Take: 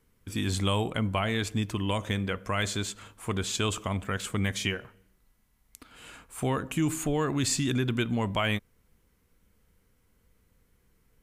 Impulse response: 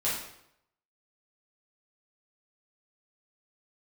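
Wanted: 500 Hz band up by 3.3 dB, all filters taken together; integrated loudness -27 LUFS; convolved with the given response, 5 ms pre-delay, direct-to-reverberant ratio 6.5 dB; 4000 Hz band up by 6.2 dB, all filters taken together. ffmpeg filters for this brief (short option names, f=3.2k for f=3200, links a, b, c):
-filter_complex "[0:a]equalizer=f=500:t=o:g=4,equalizer=f=4k:t=o:g=8,asplit=2[a][b];[1:a]atrim=start_sample=2205,adelay=5[c];[b][c]afir=irnorm=-1:irlink=0,volume=-14.5dB[d];[a][d]amix=inputs=2:normalize=0,volume=-0.5dB"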